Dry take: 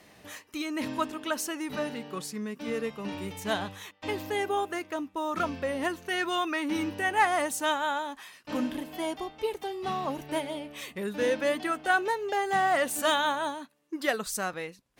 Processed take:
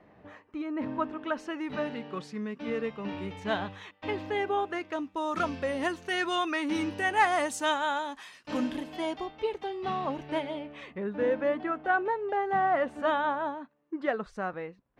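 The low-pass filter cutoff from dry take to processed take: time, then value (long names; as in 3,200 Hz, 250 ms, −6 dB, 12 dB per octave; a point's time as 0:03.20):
0:00.87 1,300 Hz
0:01.80 3,100 Hz
0:04.63 3,100 Hz
0:05.31 7,900 Hz
0:08.70 7,900 Hz
0:09.44 3,500 Hz
0:10.42 3,500 Hz
0:11.06 1,500 Hz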